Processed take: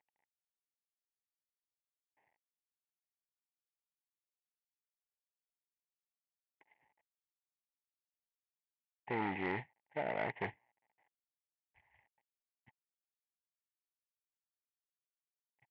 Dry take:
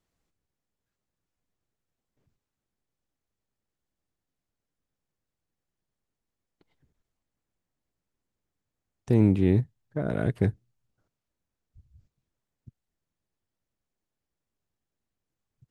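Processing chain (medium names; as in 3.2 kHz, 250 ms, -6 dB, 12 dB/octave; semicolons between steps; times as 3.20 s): CVSD coder 16 kbps; two resonant band-passes 1.3 kHz, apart 1.2 oct; transformer saturation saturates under 840 Hz; trim +10 dB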